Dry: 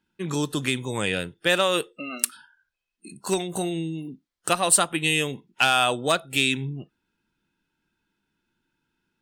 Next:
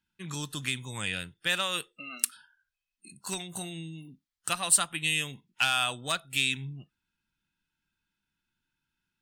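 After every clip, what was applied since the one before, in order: bell 430 Hz -14 dB 2 oct; gain -3.5 dB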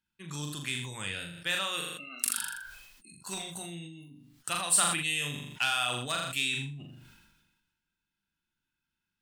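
notches 60/120/180/240/300 Hz; flutter echo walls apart 7 m, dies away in 0.39 s; sustainer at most 43 dB/s; gain -4 dB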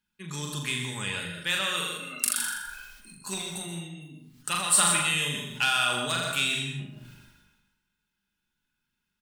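notch 680 Hz, Q 12; comb 4.8 ms, depth 37%; plate-style reverb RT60 0.68 s, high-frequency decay 0.5×, pre-delay 0.115 s, DRR 4.5 dB; gain +3 dB

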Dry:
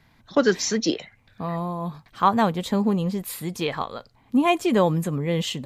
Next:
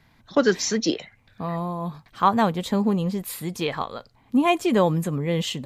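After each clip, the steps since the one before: nothing audible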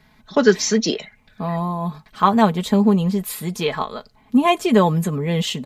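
comb 4.7 ms, depth 56%; gain +3 dB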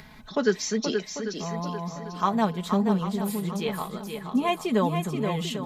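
swung echo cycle 0.794 s, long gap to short 1.5:1, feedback 31%, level -6.5 dB; upward compressor, threshold -26 dBFS; gain -9 dB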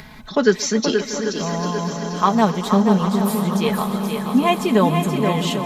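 swelling echo 0.128 s, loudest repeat 5, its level -17 dB; gain +7.5 dB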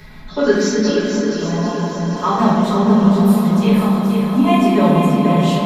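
reverb RT60 1.6 s, pre-delay 5 ms, DRR -9.5 dB; gain -9.5 dB

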